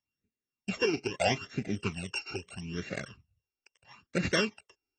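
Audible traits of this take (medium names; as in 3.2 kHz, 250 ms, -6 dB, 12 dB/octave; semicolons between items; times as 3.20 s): a buzz of ramps at a fixed pitch in blocks of 16 samples; phasing stages 12, 0.77 Hz, lowest notch 180–1000 Hz; AAC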